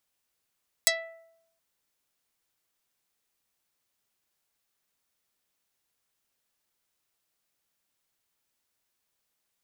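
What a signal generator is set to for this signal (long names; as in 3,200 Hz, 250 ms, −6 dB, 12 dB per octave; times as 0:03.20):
Karplus-Strong string E5, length 0.72 s, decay 0.81 s, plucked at 0.47, dark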